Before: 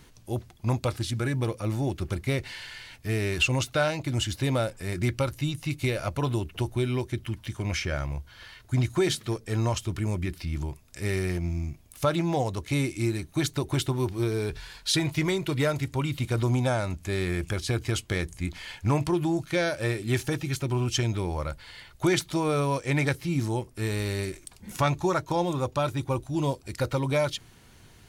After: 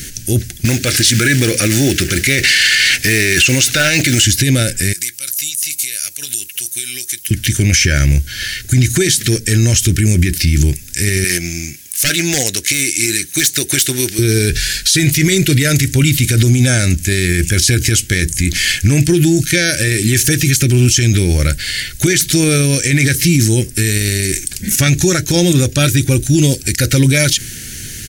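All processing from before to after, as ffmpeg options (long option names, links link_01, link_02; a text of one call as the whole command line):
ffmpeg -i in.wav -filter_complex "[0:a]asettb=1/sr,asplit=3[link_01][link_02][link_03];[link_01]atrim=end=0.654[link_04];[link_02]atrim=start=0.65:end=4.25,asetpts=PTS-STARTPTS,afade=type=in:duration=0.004:curve=qsin,afade=type=out:start_time=3.596:duration=0.004:curve=qsin,acompressor=threshold=-31dB:ratio=12:attack=3.2:release=140:knee=1:detection=peak,acrusher=bits=6:mode=log:mix=0:aa=0.000001,asplit=2[link_05][link_06];[link_06]highpass=frequency=720:poles=1,volume=21dB,asoftclip=type=tanh:threshold=-14.5dB[link_07];[link_05][link_07]amix=inputs=2:normalize=0,lowpass=frequency=3200:poles=1,volume=-6dB[link_08];[link_03]atrim=start=4.246[link_09];[link_04][link_08]acrossfade=duration=0.004:curve1=hsin:curve2=qsin[link_10];[link_10][link_09]acrossfade=duration=0.004:curve1=qsin:curve2=hsin,asettb=1/sr,asplit=3[link_11][link_12][link_13];[link_11]atrim=end=4.934[link_14];[link_12]atrim=start=4.93:end=7.31,asetpts=PTS-STARTPTS,afade=type=in:duration=0.004:curve=qsin,afade=type=out:start_time=2.376:duration=0.004:curve=qsin,aderivative,acompressor=threshold=-46dB:ratio=6:attack=3.2:release=140:knee=1:detection=peak[link_15];[link_13]atrim=start=7.306[link_16];[link_14][link_15]acrossfade=duration=0.004:curve1=hsin:curve2=qsin[link_17];[link_17][link_16]acrossfade=duration=0.004:curve1=qsin:curve2=hsin,asettb=1/sr,asplit=3[link_18][link_19][link_20];[link_18]atrim=end=11.244[link_21];[link_19]atrim=start=11.24:end=14.19,asetpts=PTS-STARTPTS,afade=type=in:duration=0.004:curve=qsin,afade=type=out:start_time=2.946:duration=0.004:curve=qsin,highpass=frequency=870:poles=1,aeval=exprs='0.0531*(abs(mod(val(0)/0.0531+3,4)-2)-1)':channel_layout=same[link_22];[link_20]atrim=start=14.186[link_23];[link_21][link_22]acrossfade=duration=0.004:curve1=hsin:curve2=qsin[link_24];[link_24][link_23]acrossfade=duration=0.004:curve1=qsin:curve2=hsin,firequalizer=gain_entry='entry(270,0);entry(1000,-26);entry(1600,3);entry(3700,3);entry(6000,12)':delay=0.05:min_phase=1,alimiter=level_in=23.5dB:limit=-1dB:release=50:level=0:latency=1,volume=-1.5dB" out.wav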